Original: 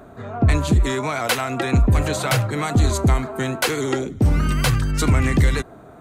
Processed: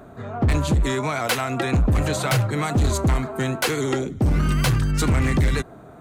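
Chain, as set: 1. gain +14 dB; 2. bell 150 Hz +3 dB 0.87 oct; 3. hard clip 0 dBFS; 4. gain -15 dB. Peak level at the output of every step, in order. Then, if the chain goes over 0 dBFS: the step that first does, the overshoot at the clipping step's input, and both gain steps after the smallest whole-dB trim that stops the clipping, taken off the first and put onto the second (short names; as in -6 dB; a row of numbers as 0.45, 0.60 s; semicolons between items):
+5.5, +7.5, 0.0, -15.0 dBFS; step 1, 7.5 dB; step 1 +6 dB, step 4 -7 dB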